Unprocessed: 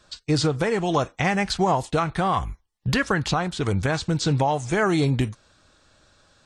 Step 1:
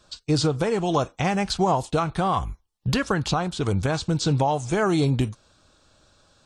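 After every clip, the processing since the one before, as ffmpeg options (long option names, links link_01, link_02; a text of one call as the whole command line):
ffmpeg -i in.wav -af "equalizer=frequency=1900:width=2.5:gain=-7.5" out.wav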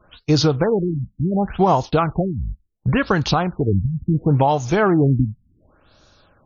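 ffmpeg -i in.wav -af "afftfilt=real='re*lt(b*sr/1024,230*pow(7100/230,0.5+0.5*sin(2*PI*0.7*pts/sr)))':imag='im*lt(b*sr/1024,230*pow(7100/230,0.5+0.5*sin(2*PI*0.7*pts/sr)))':win_size=1024:overlap=0.75,volume=5.5dB" out.wav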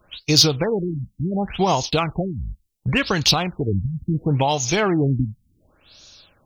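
ffmpeg -i in.wav -af "aexciter=amount=3.2:drive=8.2:freq=2100,volume=-3.5dB" out.wav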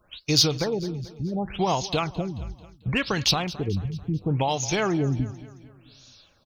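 ffmpeg -i in.wav -af "aecho=1:1:220|440|660|880:0.133|0.0667|0.0333|0.0167,volume=-5dB" out.wav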